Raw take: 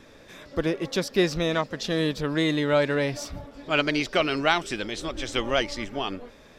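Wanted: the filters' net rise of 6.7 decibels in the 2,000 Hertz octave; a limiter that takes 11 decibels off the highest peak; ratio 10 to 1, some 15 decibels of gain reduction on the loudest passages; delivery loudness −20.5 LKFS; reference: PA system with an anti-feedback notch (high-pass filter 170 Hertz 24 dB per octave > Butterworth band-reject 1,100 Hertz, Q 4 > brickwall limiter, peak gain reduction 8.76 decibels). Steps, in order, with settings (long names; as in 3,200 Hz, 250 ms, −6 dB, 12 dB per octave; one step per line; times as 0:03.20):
parametric band 2,000 Hz +8.5 dB
downward compressor 10 to 1, threshold −30 dBFS
brickwall limiter −27.5 dBFS
high-pass filter 170 Hz 24 dB per octave
Butterworth band-reject 1,100 Hz, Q 4
level +22 dB
brickwall limiter −11.5 dBFS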